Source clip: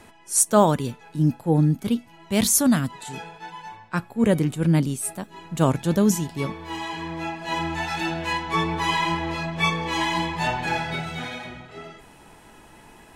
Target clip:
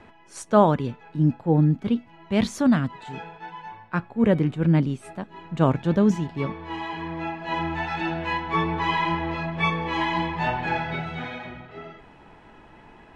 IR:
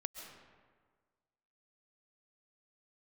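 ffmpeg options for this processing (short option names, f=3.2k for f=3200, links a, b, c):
-af "lowpass=2.7k"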